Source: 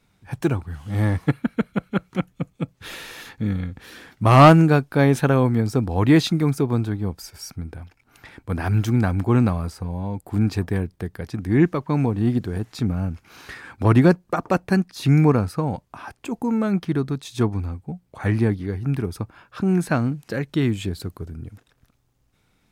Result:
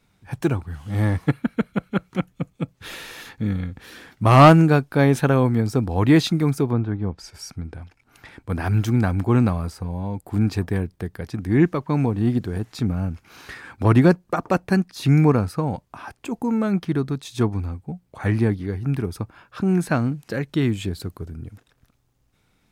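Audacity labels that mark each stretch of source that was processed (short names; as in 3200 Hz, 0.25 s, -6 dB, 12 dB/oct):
6.700000	8.500000	treble ducked by the level closes to 2000 Hz, closed at -19.5 dBFS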